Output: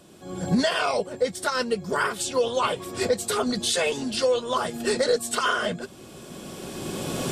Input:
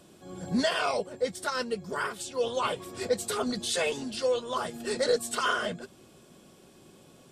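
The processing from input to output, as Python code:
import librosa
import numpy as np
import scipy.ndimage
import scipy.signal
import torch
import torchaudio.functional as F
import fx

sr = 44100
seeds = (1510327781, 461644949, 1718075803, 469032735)

y = fx.recorder_agc(x, sr, target_db=-17.0, rise_db_per_s=14.0, max_gain_db=30)
y = F.gain(torch.from_numpy(y), 3.0).numpy()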